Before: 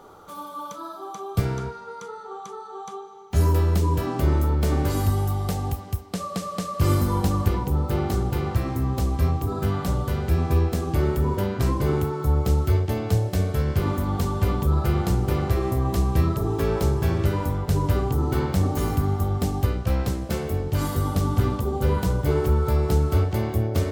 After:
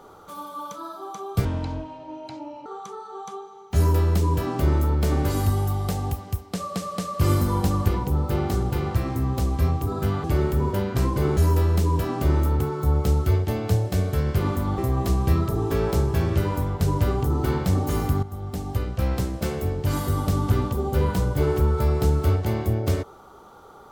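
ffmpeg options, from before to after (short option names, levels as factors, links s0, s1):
-filter_complex "[0:a]asplit=8[s0][s1][s2][s3][s4][s5][s6][s7];[s0]atrim=end=1.454[s8];[s1]atrim=start=1.45:end=2.26,asetpts=PTS-STARTPTS,asetrate=29547,aresample=44100[s9];[s2]atrim=start=2.256:end=9.842[s10];[s3]atrim=start=10.878:end=12.012[s11];[s4]atrim=start=3.348:end=4.582[s12];[s5]atrim=start=12.008:end=14.192[s13];[s6]atrim=start=15.658:end=19.11,asetpts=PTS-STARTPTS,afade=t=out:st=3.448:d=0.004:c=hsin:silence=0.211349[s14];[s7]atrim=start=19.11,asetpts=PTS-STARTPTS,afade=t=in:d=0.94:silence=0.211349[s15];[s8][s9]acrossfade=d=0.004:c1=hsin:c2=hsin[s16];[s16][s10]acrossfade=d=0.004:c1=hsin:c2=hsin[s17];[s17][s11]acrossfade=d=0.004:c1=hsin:c2=hsin[s18];[s18][s12]acrossfade=d=0.004:c1=hsin:c2=hsin[s19];[s19][s13]acrossfade=d=0.004:c1=hsin:c2=hsin[s20];[s14][s15]concat=n=2:v=0:a=1[s21];[s20][s21]acrossfade=d=0.004:c1=hsin:c2=hsin"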